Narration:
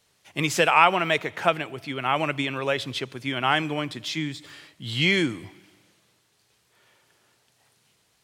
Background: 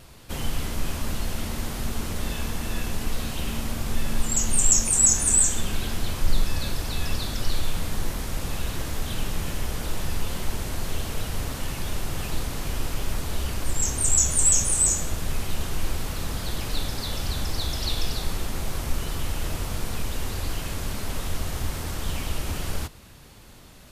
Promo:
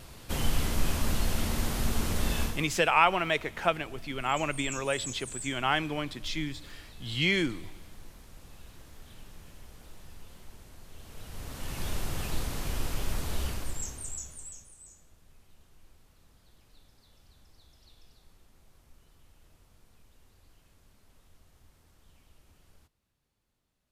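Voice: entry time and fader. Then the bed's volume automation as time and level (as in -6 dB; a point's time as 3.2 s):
2.20 s, -5.0 dB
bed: 2.43 s 0 dB
2.78 s -21.5 dB
10.9 s -21.5 dB
11.84 s -4 dB
13.46 s -4 dB
14.76 s -32 dB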